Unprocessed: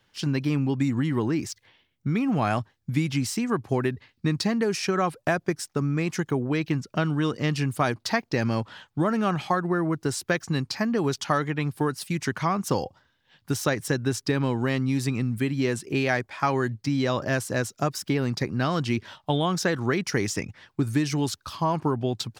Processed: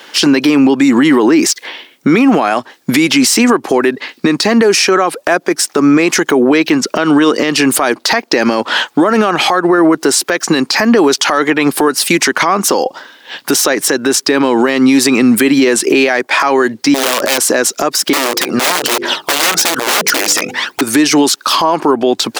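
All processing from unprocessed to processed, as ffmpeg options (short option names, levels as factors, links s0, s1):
-filter_complex "[0:a]asettb=1/sr,asplit=3[s0][s1][s2];[s0]atrim=end=16.944[s3];[s1]atrim=start=16.94:end=17.38,asetpts=PTS-STARTPTS,afade=t=in:d=0.004:c=qsin,afade=t=out:st=0.436:d=0.004:c=qsin,bandreject=f=287.4:t=h:w=4,bandreject=f=574.8:t=h:w=4,aeval=exprs='(mod(10.6*val(0)+1,2)-1)/10.6':c=same[s4];[s2]atrim=start=17.376[s5];[s3][s4]acrossfade=d=0.004:c1=hsin:c2=qsin[s6];[s6][s5]acrossfade=d=0.004:c1=qsin:c2=hsin,asettb=1/sr,asplit=3[s7][s8][s9];[s7]atrim=end=18.134[s10];[s8]atrim=start=18.13:end=20.81,asetpts=PTS-STARTPTS,afade=t=in:d=0.004:c=qsin,afade=t=out:st=2.676:d=0.004:c=qsin,aphaser=in_gain=1:out_gain=1:delay=1.7:decay=0.62:speed=1.1:type=triangular,aeval=exprs='(mod(10*val(0)+1,2)-1)/10':c=same,bandreject=f=50:t=h:w=6,bandreject=f=100:t=h:w=6,bandreject=f=150:t=h:w=6,bandreject=f=200:t=h:w=6,bandreject=f=250:t=h:w=6,bandreject=f=300:t=h:w=6,bandreject=f=350:t=h:w=6,bandreject=f=400:t=h:w=6,bandreject=f=450:t=h:w=6,bandreject=f=500:t=h:w=6[s11];[s9]atrim=start=20.806[s12];[s10][s11]acrossfade=d=0.004:c1=hsin:c2=qsin[s13];[s13][s12]acrossfade=d=0.004:c1=qsin:c2=hsin,highpass=f=280:w=0.5412,highpass=f=280:w=1.3066,acompressor=threshold=0.0224:ratio=10,alimiter=level_in=44.7:limit=0.891:release=50:level=0:latency=1,volume=0.891"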